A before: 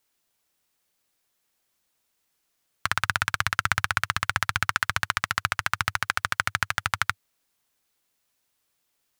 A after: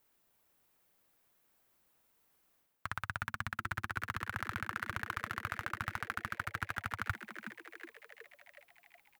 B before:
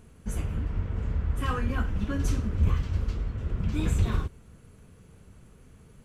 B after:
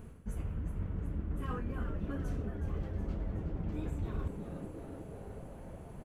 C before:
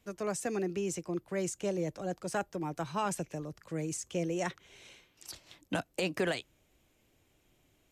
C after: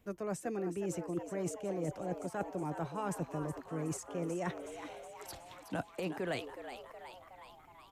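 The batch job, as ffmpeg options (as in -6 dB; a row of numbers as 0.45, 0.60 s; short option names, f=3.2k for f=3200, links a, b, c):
-filter_complex "[0:a]equalizer=f=5.5k:w=0.46:g=-10.5,areverse,acompressor=threshold=-38dB:ratio=10,areverse,asplit=9[a][b][c][d][e][f][g][h][i];[b]adelay=369,afreqshift=120,volume=-10dB[j];[c]adelay=738,afreqshift=240,volume=-14dB[k];[d]adelay=1107,afreqshift=360,volume=-18dB[l];[e]adelay=1476,afreqshift=480,volume=-22dB[m];[f]adelay=1845,afreqshift=600,volume=-26.1dB[n];[g]adelay=2214,afreqshift=720,volume=-30.1dB[o];[h]adelay=2583,afreqshift=840,volume=-34.1dB[p];[i]adelay=2952,afreqshift=960,volume=-38.1dB[q];[a][j][k][l][m][n][o][p][q]amix=inputs=9:normalize=0,volume=4.5dB"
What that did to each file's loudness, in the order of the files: -13.5, -10.0, -4.0 LU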